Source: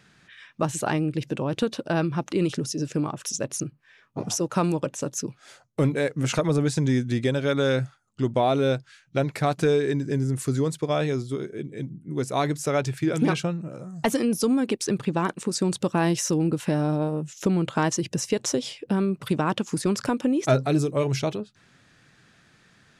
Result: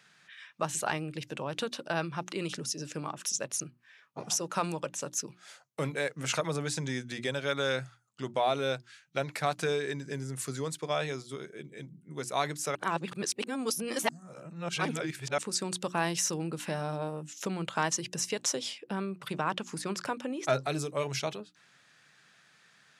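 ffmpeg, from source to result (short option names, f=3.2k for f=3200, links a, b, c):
-filter_complex "[0:a]asettb=1/sr,asplit=3[a][b][c];[a]atrim=end=18.784[d];[b]atrim=start=18.78:end=20.53,asetpts=PTS-STARTPTS,afade=t=in:d=0.004:c=qsin,afade=t=out:st=1.746:d=0.004:c=qsin,highshelf=f=4k:g=-6[e];[c]atrim=start=20.526[f];[d][e]acrossfade=d=0.004:c1=hsin:c2=qsin[g];[g][f]acrossfade=d=0.004:c1=qsin:c2=hsin,asplit=3[h][i][j];[h]atrim=end=12.752[k];[i]atrim=start=12.748:end=15.382,asetpts=PTS-STARTPTS,areverse[l];[j]atrim=start=15.378[m];[k][l]acrossfade=d=0.004:c1=hsin:c2=hsin[n];[n][m]acrossfade=d=0.004:c1=hsin:c2=hsin,highpass=f=150:w=0.5412,highpass=f=150:w=1.3066,equalizer=f=270:w=0.68:g=-12,bandreject=f=60:t=h:w=6,bandreject=f=120:t=h:w=6,bandreject=f=180:t=h:w=6,bandreject=f=240:t=h:w=6,bandreject=f=300:t=h:w=6,bandreject=f=360:t=h:w=6,volume=-1.5dB"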